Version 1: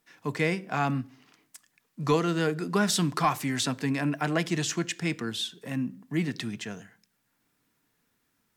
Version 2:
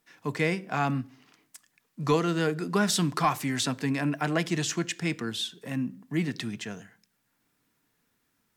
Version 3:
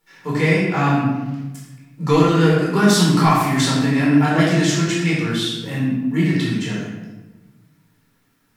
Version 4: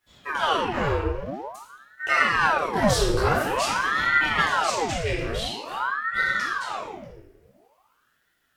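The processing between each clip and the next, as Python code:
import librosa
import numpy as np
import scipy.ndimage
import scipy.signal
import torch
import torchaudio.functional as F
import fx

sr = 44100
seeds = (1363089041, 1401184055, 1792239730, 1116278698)

y1 = x
y2 = fx.room_shoebox(y1, sr, seeds[0], volume_m3=640.0, walls='mixed', distance_m=4.3)
y3 = fx.ring_lfo(y2, sr, carrier_hz=940.0, swing_pct=80, hz=0.48)
y3 = F.gain(torch.from_numpy(y3), -4.0).numpy()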